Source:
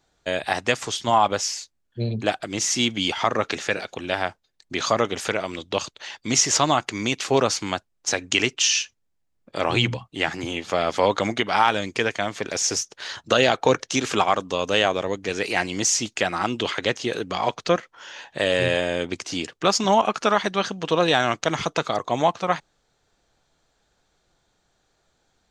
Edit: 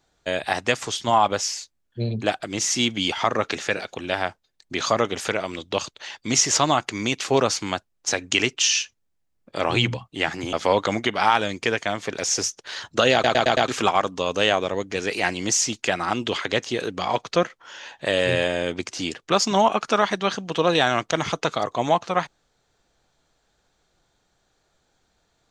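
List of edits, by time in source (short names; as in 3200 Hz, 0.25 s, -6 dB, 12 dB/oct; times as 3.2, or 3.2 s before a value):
10.53–10.86 cut
13.46 stutter in place 0.11 s, 5 plays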